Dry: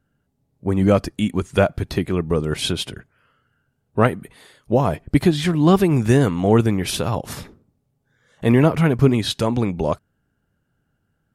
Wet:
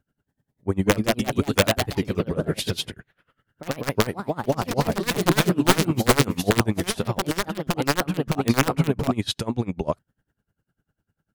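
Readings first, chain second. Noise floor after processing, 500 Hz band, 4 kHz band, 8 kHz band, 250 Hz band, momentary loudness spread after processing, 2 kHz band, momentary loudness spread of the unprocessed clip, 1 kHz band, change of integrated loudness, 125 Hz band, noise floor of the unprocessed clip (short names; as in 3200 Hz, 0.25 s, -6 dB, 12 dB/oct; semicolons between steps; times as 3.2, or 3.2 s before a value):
-84 dBFS, -4.5 dB, +1.0 dB, +4.0 dB, -4.5 dB, 8 LU, +2.0 dB, 11 LU, -1.0 dB, -4.0 dB, -5.5 dB, -71 dBFS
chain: wrapped overs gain 6 dB; echoes that change speed 0.267 s, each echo +2 st, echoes 3; dB-linear tremolo 10 Hz, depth 23 dB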